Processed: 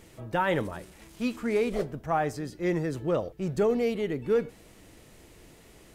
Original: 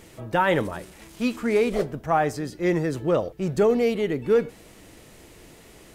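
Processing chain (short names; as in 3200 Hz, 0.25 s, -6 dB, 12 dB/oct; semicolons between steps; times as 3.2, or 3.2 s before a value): low shelf 140 Hz +3.5 dB; gain -5.5 dB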